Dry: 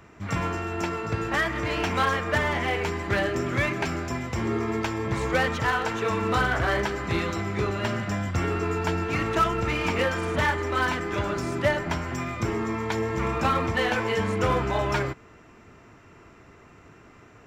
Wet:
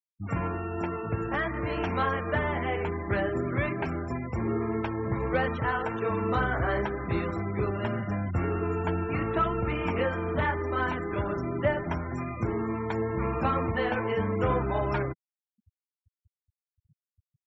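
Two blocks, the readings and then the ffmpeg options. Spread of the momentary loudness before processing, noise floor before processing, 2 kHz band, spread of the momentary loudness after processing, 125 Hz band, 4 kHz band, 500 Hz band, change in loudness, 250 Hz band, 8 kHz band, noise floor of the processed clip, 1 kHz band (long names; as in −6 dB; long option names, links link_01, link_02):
5 LU, −52 dBFS, −6.0 dB, 5 LU, −1.5 dB, −11.5 dB, −2.0 dB, −3.0 dB, −1.5 dB, below −20 dB, below −85 dBFS, −3.5 dB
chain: -af "afftfilt=real='re*gte(hypot(re,im),0.0282)':imag='im*gte(hypot(re,im),0.0282)':win_size=1024:overlap=0.75,highshelf=frequency=2200:gain=-11,volume=-1.5dB"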